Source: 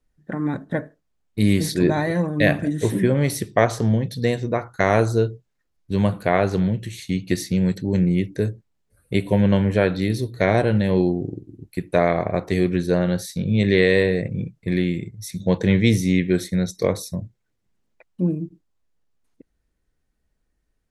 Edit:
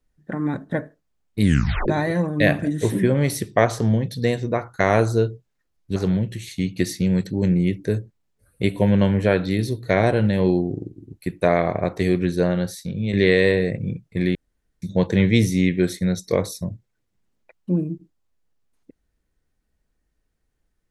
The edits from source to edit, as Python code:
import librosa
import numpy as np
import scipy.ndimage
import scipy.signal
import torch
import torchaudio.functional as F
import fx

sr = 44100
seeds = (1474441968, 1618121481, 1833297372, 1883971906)

y = fx.edit(x, sr, fx.tape_stop(start_s=1.43, length_s=0.45),
    fx.cut(start_s=5.96, length_s=0.51),
    fx.fade_out_to(start_s=12.9, length_s=0.74, floor_db=-6.5),
    fx.room_tone_fill(start_s=14.86, length_s=0.47), tone=tone)